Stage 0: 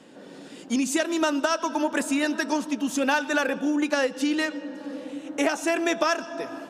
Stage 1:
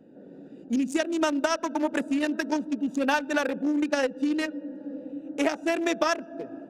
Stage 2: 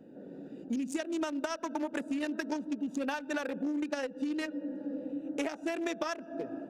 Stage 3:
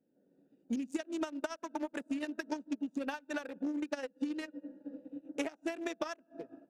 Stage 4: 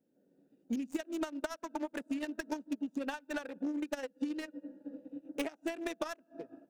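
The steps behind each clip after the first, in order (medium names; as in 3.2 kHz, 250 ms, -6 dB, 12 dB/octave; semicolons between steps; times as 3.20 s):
local Wiener filter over 41 samples
compression, threshold -31 dBFS, peak gain reduction 12 dB
upward expansion 2.5:1, over -46 dBFS
tracing distortion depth 0.093 ms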